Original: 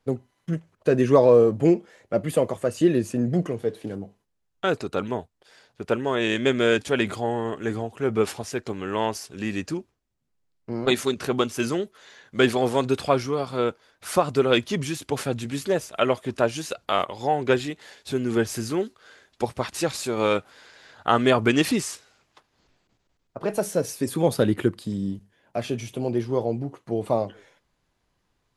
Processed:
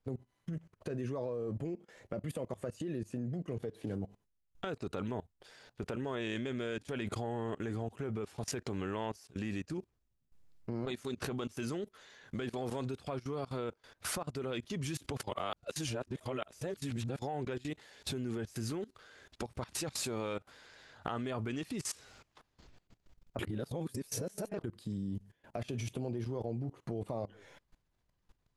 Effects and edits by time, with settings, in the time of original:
9.16–9.78 upward expander, over -47 dBFS
15.23–17.19 reverse
23.39–24.64 reverse
whole clip: compressor 12:1, threshold -33 dBFS; low shelf 130 Hz +10 dB; level quantiser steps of 21 dB; gain +5 dB

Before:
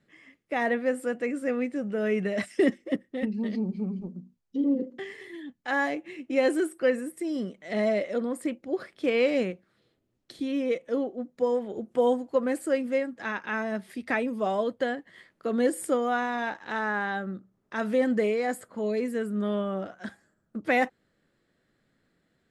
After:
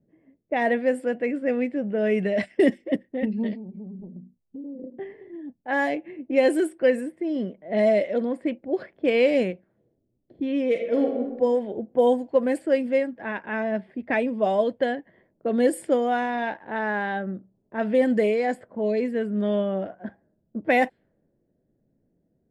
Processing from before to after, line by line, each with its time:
3.53–4.84 compressor, threshold -39 dBFS
10.7–11.37 reverb throw, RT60 1.1 s, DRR 1.5 dB
whole clip: notch 3900 Hz, Q 15; low-pass opened by the level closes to 460 Hz, open at -21.5 dBFS; thirty-one-band EQ 630 Hz +4 dB, 1250 Hz -12 dB, 6300 Hz -9 dB; gain +3.5 dB

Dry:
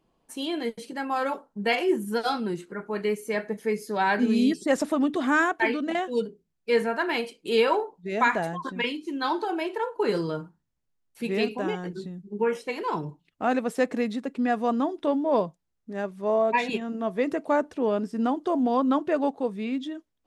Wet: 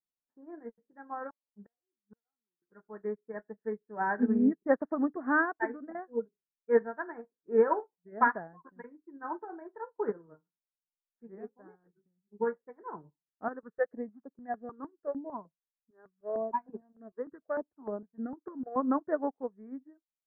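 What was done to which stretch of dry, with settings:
1.3–2.62 flipped gate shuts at -23 dBFS, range -33 dB
10.12–12.29 flange 1.2 Hz, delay 2 ms, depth 9.2 ms, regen +75%
13.48–18.76 step phaser 6.6 Hz 680–7100 Hz
whole clip: steep low-pass 1800 Hz 72 dB/oct; upward expander 2.5:1, over -43 dBFS

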